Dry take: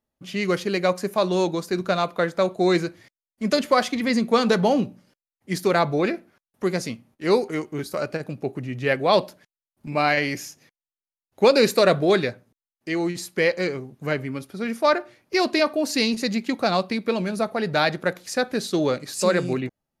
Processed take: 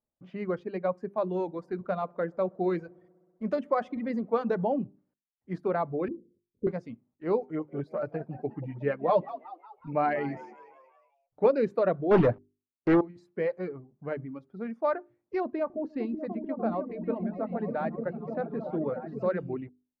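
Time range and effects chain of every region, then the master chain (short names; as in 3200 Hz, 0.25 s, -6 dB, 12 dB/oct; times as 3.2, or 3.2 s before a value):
1.34–4.64 high shelf 8000 Hz +9.5 dB + dark delay 63 ms, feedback 80%, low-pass 890 Hz, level -17.5 dB
6.08–6.67 steep low-pass 510 Hz 96 dB/oct + transient shaper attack +5 dB, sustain +12 dB
7.41–11.46 comb 6.7 ms, depth 68% + frequency-shifting echo 0.183 s, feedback 50%, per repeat +81 Hz, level -12 dB
12.11–13.01 sample leveller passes 5 + Doppler distortion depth 0.3 ms
15.4–19.26 tape spacing loss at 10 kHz 21 dB + repeats that get brighter 0.298 s, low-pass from 200 Hz, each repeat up 1 oct, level 0 dB
whole clip: LPF 1100 Hz 12 dB/oct; notches 50/100/150/200/250/300/350/400 Hz; reverb removal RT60 1.1 s; gain -6.5 dB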